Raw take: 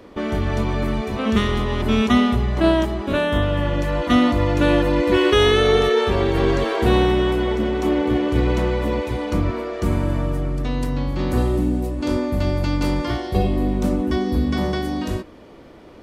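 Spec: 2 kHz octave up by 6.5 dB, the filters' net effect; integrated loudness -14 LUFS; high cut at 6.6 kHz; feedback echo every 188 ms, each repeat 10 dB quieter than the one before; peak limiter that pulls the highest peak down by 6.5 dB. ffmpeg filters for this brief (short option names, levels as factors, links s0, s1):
-af "lowpass=6600,equalizer=f=2000:t=o:g=8,alimiter=limit=0.335:level=0:latency=1,aecho=1:1:188|376|564|752:0.316|0.101|0.0324|0.0104,volume=2"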